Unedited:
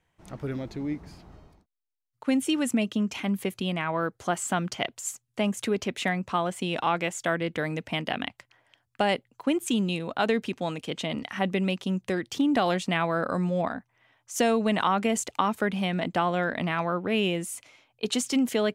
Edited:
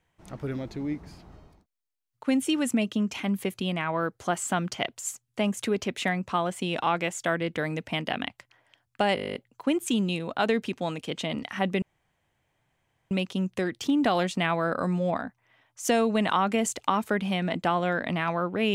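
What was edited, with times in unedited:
9.15 s: stutter 0.02 s, 11 plays
11.62 s: insert room tone 1.29 s

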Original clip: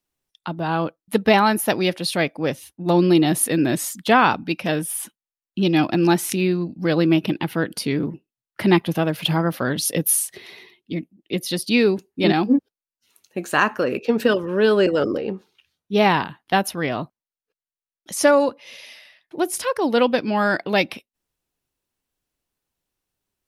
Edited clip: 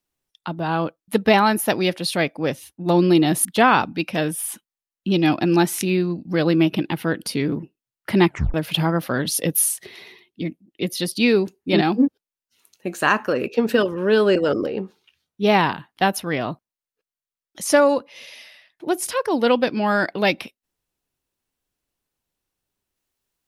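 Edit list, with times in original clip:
3.45–3.96 s: delete
8.78 s: tape stop 0.27 s

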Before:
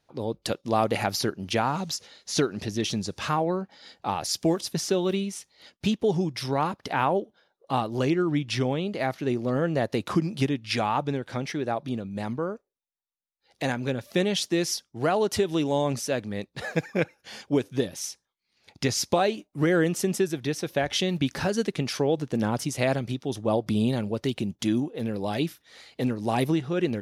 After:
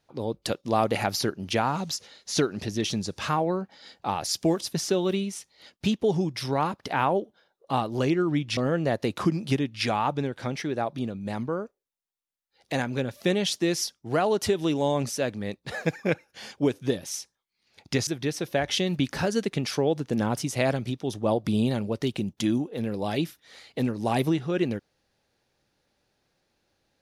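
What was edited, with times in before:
8.57–9.47 s: delete
18.97–20.29 s: delete

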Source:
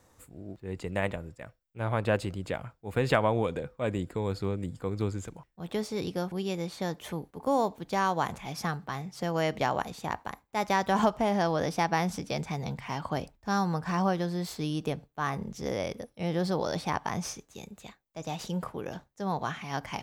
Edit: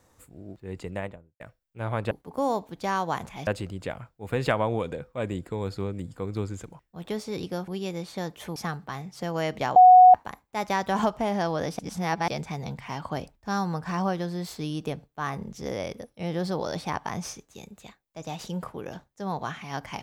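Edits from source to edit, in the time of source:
0.79–1.40 s: studio fade out
7.20–8.56 s: move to 2.11 s
9.76–10.14 s: bleep 735 Hz -8.5 dBFS
11.79–12.28 s: reverse

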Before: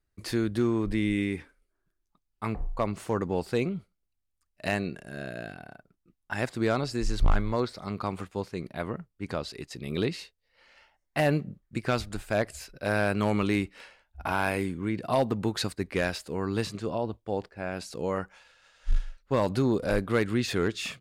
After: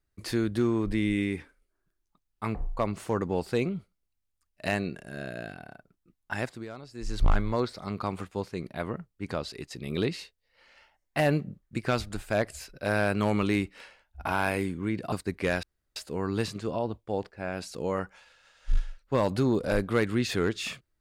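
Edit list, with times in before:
6.34–7.25 s: dip -15.5 dB, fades 0.32 s
15.12–15.64 s: delete
16.15 s: insert room tone 0.33 s

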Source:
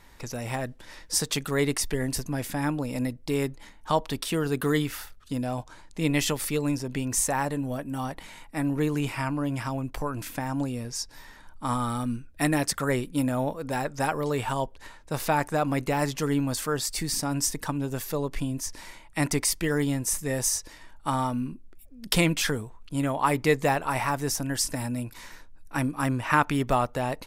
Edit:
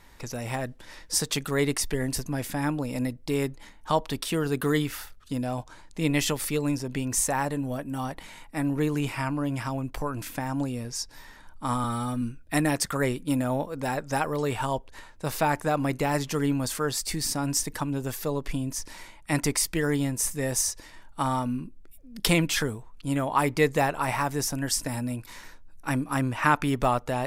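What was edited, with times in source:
11.84–12.09 s: stretch 1.5×

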